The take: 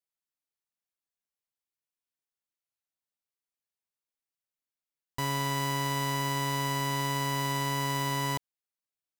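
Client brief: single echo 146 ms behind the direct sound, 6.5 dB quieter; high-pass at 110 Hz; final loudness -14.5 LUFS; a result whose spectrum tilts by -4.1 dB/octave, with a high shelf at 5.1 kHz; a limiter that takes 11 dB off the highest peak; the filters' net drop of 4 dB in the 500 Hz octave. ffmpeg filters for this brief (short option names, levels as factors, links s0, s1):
-af "highpass=110,equalizer=f=500:t=o:g=-5,highshelf=f=5100:g=-3,alimiter=level_in=2.24:limit=0.0631:level=0:latency=1,volume=0.447,aecho=1:1:146:0.473,volume=18.8"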